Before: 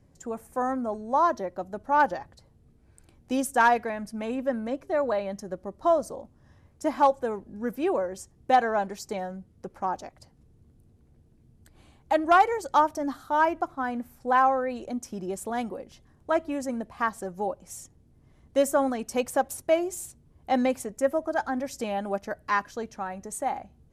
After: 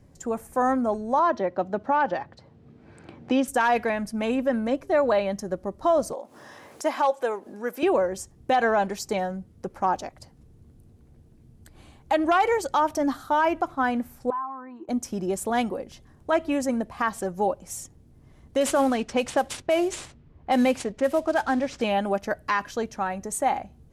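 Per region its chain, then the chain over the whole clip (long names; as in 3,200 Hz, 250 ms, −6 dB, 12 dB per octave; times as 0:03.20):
0:01.19–0:03.48: band-pass filter 110–3,600 Hz + multiband upward and downward compressor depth 40%
0:06.13–0:07.83: high-pass filter 450 Hz + upward compression, threshold −37 dBFS
0:14.30–0:14.89: pair of resonant band-passes 570 Hz, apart 1.6 octaves + downward compressor 2.5 to 1, threshold −39 dBFS
0:18.60–0:21.81: variable-slope delta modulation 64 kbit/s + low-pass that shuts in the quiet parts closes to 1,800 Hz, open at −20.5 dBFS
whole clip: dynamic equaliser 2,900 Hz, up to +5 dB, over −47 dBFS, Q 1.5; brickwall limiter −19 dBFS; level +5.5 dB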